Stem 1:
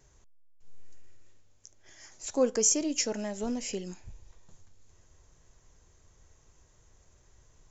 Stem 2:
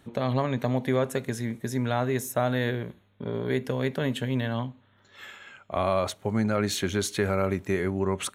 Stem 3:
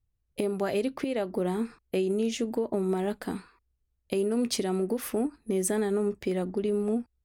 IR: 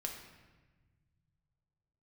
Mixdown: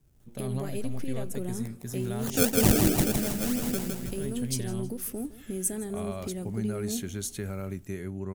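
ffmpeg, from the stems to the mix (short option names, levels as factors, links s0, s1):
-filter_complex "[0:a]acrusher=samples=31:mix=1:aa=0.000001:lfo=1:lforange=31:lforate=3,volume=0.668,asplit=3[s0][s1][s2];[s1]volume=0.631[s3];[1:a]adelay=200,volume=0.178[s4];[2:a]volume=0.237,asplit=2[s5][s6];[s6]volume=0.133[s7];[s2]apad=whole_len=376616[s8];[s4][s8]sidechaincompress=threshold=0.00562:ratio=8:attack=16:release=716[s9];[s3][s7]amix=inputs=2:normalize=0,aecho=0:1:160|320|480|640|800|960:1|0.46|0.212|0.0973|0.0448|0.0206[s10];[s0][s9][s5][s10]amix=inputs=4:normalize=0,equalizer=f=125:t=o:w=1:g=4,equalizer=f=500:t=o:w=1:g=-5,equalizer=f=1000:t=o:w=1:g=-8,equalizer=f=2000:t=o:w=1:g=-5,equalizer=f=4000:t=o:w=1:g=-6,dynaudnorm=f=190:g=3:m=2.37,highshelf=f=4900:g=10"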